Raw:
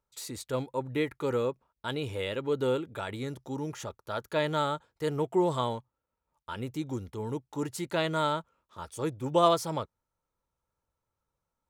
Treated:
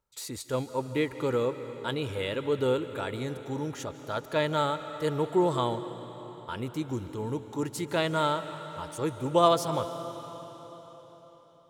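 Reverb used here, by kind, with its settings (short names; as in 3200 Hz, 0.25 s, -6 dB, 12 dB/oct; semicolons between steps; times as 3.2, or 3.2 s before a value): digital reverb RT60 4.4 s, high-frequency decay 0.95×, pre-delay 0.115 s, DRR 10.5 dB; gain +1.5 dB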